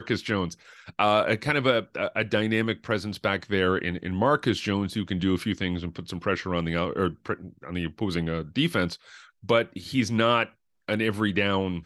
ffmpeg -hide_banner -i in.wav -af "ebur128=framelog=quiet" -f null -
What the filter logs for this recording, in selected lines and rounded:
Integrated loudness:
  I:         -26.4 LUFS
  Threshold: -36.6 LUFS
Loudness range:
  LRA:         3.4 LU
  Threshold: -46.9 LUFS
  LRA low:   -28.9 LUFS
  LRA high:  -25.5 LUFS